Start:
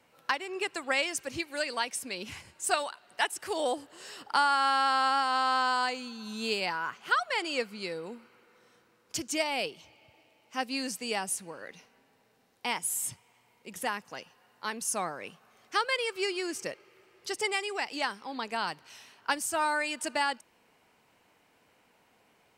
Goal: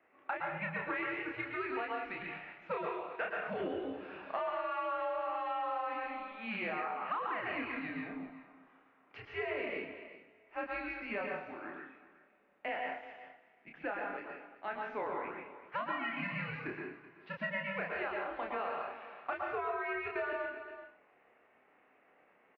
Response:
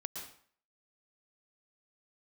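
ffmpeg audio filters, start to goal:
-filter_complex "[0:a]asplit=2[s0][s1];[s1]adelay=29,volume=0.668[s2];[s0][s2]amix=inputs=2:normalize=0,asoftclip=type=hard:threshold=0.0841,highpass=f=520:t=q:w=0.5412,highpass=f=520:t=q:w=1.307,lowpass=f=2700:t=q:w=0.5176,lowpass=f=2700:t=q:w=0.7071,lowpass=f=2700:t=q:w=1.932,afreqshift=-220,asettb=1/sr,asplit=3[s3][s4][s5];[s3]atrim=end=12.684[s6];[s4]atrim=start=12.68:end=14.87,asetpts=PTS-STARTPTS,afade=t=in:d=0.004:c=qsin,afade=t=out:st=2.186:d=0.004:c=qsin,bandreject=f=1100:w=6[s7];[s5]atrim=start=14.866[s8];[s6][s7]acrossfade=d=0.004:c1=hsin:c2=qsin[s9];[s9][s8]acrossfade=d=0.004:c1=qsin:c2=hsin,aecho=1:1:381:0.141[s10];[1:a]atrim=start_sample=2205[s11];[s10][s11]afir=irnorm=-1:irlink=0,acompressor=threshold=0.0224:ratio=10" -ar 16000 -c:a aac -b:a 48k

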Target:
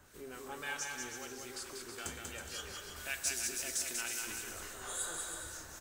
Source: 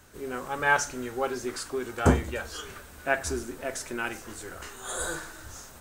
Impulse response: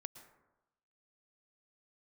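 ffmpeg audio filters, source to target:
-filter_complex "[0:a]asettb=1/sr,asplit=3[s0][s1][s2];[s0]atrim=end=2.964[s3];[s1]atrim=start=2.96:end=4.32,asetpts=PTS-STARTPTS,afade=t=in:d=0.004:c=qsin,afade=t=out:st=1.356:d=0.004:c=qsin,highshelf=f=2200:g=10.5[s4];[s2]atrim=start=4.316[s5];[s3][s4]acrossfade=d=0.004:c1=hsin:c2=qsin[s6];[s6][s5]acrossfade=d=0.004:c1=qsin:c2=hsin,acrossover=split=2500[s7][s8];[s7]acompressor=threshold=0.01:ratio=6[s9];[s9][s8]amix=inputs=2:normalize=0,acrossover=split=1700[s10][s11];[s10]aeval=exprs='val(0)*(1-0.5/2+0.5/2*cos(2*PI*3.7*n/s))':c=same[s12];[s11]aeval=exprs='val(0)*(1-0.5/2-0.5/2*cos(2*PI*3.7*n/s))':c=same[s13];[s12][s13]amix=inputs=2:normalize=0,asoftclip=type=hard:threshold=0.0668,aecho=1:1:190|323|416.1|481.3|526.9:0.631|0.398|0.251|0.158|0.1,asplit=2[s14][s15];[1:a]atrim=start_sample=2205,lowshelf=f=410:g=-6[s16];[s15][s16]afir=irnorm=-1:irlink=0,volume=1.78[s17];[s14][s17]amix=inputs=2:normalize=0,volume=0.355"

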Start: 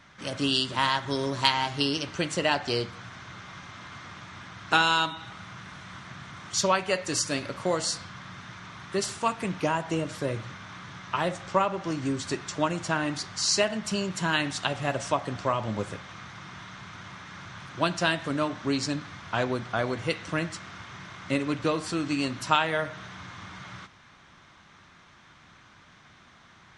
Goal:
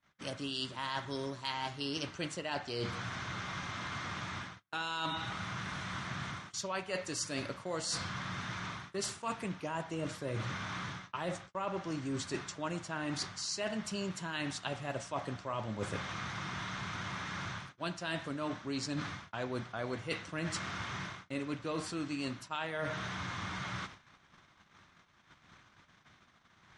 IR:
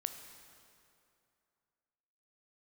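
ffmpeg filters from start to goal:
-af "areverse,acompressor=threshold=0.0141:ratio=20,areverse,agate=range=0.02:threshold=0.00251:ratio=16:detection=peak,volume=1.5"

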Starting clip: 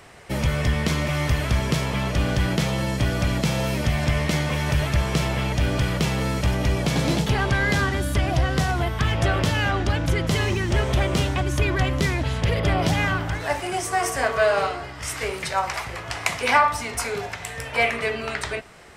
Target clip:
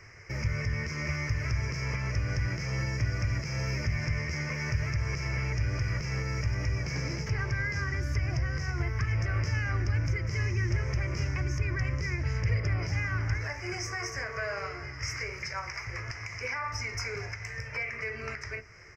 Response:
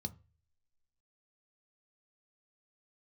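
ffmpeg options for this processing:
-filter_complex "[0:a]firequalizer=gain_entry='entry(110,0);entry(170,-15);entry(360,1);entry(780,-8);entry(1200,-5);entry(2200,8);entry(3500,-29);entry(5000,12);entry(8700,-23);entry(15000,-12)':delay=0.05:min_phase=1,alimiter=limit=0.112:level=0:latency=1:release=216,asplit=2[s0][s1];[1:a]atrim=start_sample=2205[s2];[s1][s2]afir=irnorm=-1:irlink=0,volume=0.447[s3];[s0][s3]amix=inputs=2:normalize=0,volume=0.668"

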